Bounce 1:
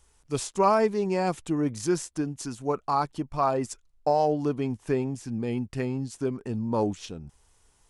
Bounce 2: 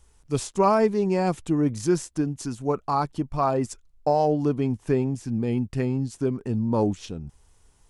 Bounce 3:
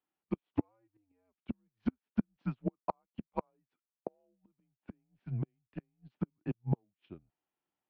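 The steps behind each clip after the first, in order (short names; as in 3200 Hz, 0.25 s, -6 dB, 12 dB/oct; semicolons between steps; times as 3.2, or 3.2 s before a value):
low shelf 350 Hz +6.5 dB
flipped gate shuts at -17 dBFS, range -29 dB; mistuned SSB -100 Hz 250–3300 Hz; upward expander 2.5:1, over -45 dBFS; gain +3.5 dB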